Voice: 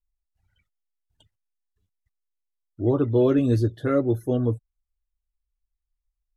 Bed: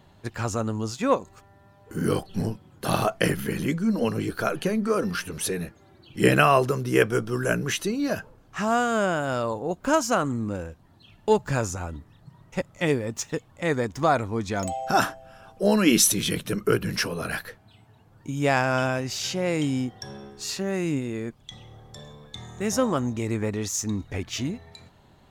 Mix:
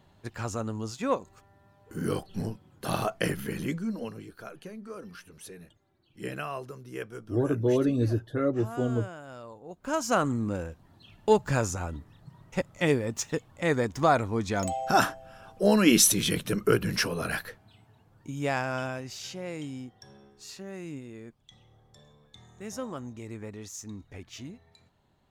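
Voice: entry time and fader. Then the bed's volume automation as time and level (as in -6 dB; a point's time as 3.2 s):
4.50 s, -5.0 dB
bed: 3.75 s -5.5 dB
4.29 s -17.5 dB
9.62 s -17.5 dB
10.17 s -1 dB
17.29 s -1 dB
19.79 s -13 dB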